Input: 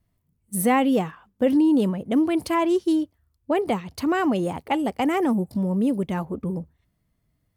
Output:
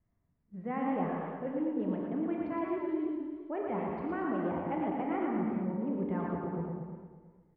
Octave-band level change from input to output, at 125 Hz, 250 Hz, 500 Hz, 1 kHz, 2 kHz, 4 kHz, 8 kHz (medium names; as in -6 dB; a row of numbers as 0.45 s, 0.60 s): -9.0 dB, -11.0 dB, -10.5 dB, -10.0 dB, -13.0 dB, under -25 dB, under -40 dB